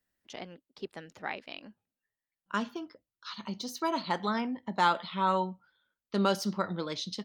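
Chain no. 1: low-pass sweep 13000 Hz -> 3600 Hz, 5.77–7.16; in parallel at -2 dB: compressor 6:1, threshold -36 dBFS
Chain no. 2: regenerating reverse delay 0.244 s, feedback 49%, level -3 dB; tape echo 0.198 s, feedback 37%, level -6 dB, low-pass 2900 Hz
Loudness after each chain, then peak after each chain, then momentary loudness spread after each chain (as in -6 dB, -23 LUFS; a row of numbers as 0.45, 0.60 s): -30.5, -30.0 LUFS; -11.5, -12.0 dBFS; 15, 17 LU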